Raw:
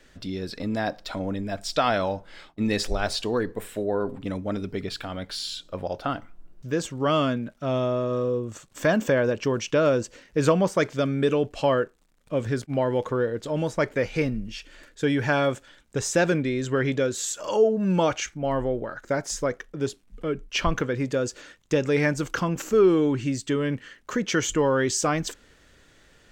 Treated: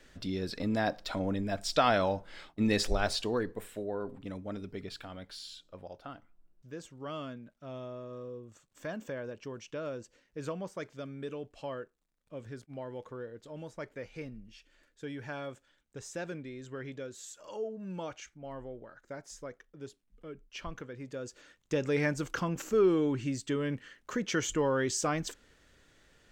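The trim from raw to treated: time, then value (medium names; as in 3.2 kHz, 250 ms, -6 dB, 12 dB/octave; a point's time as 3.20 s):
2.95 s -3 dB
3.95 s -10.5 dB
4.97 s -10.5 dB
6.14 s -17.5 dB
20.96 s -17.5 dB
21.85 s -7 dB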